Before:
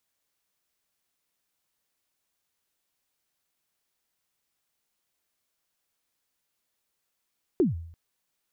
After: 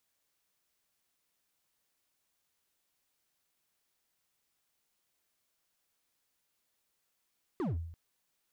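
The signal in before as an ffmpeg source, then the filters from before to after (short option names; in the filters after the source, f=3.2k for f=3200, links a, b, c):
-f lavfi -i "aevalsrc='0.158*pow(10,-3*t/0.65)*sin(2*PI*(410*0.147/log(83/410)*(exp(log(83/410)*min(t,0.147)/0.147)-1)+83*max(t-0.147,0)))':d=0.34:s=44100"
-af "alimiter=level_in=0.5dB:limit=-24dB:level=0:latency=1,volume=-0.5dB,asoftclip=type=hard:threshold=-32.5dB"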